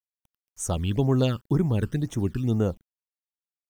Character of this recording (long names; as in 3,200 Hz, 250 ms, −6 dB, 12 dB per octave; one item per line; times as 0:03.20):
a quantiser's noise floor 10 bits, dither none
phaser sweep stages 12, 2 Hz, lowest notch 650–4,300 Hz